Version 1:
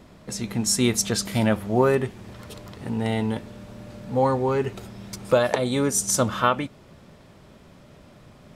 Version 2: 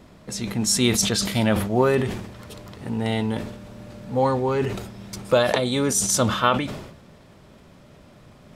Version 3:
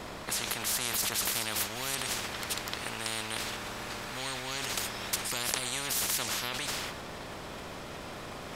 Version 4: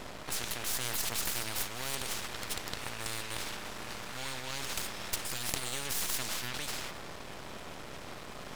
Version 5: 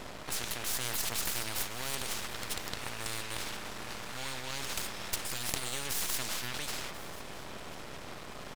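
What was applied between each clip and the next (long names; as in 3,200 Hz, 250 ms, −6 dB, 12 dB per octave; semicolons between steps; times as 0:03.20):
dynamic equaliser 3,600 Hz, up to +5 dB, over −41 dBFS, Q 1.4; level that may fall only so fast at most 62 dB per second
every bin compressed towards the loudest bin 10 to 1; level −3 dB
half-wave rectification; level +1 dB
single-tap delay 1,039 ms −19 dB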